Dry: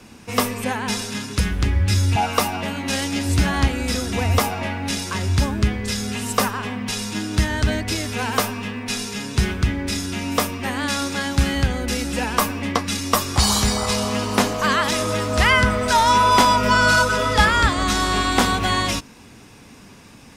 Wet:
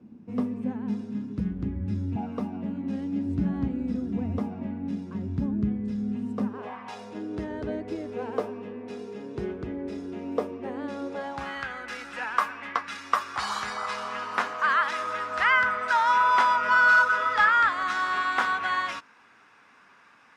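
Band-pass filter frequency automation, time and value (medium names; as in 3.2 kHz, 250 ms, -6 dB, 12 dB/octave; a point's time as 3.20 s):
band-pass filter, Q 2.3
6.47 s 220 Hz
6.77 s 1.1 kHz
7.24 s 420 Hz
11.03 s 420 Hz
11.62 s 1.4 kHz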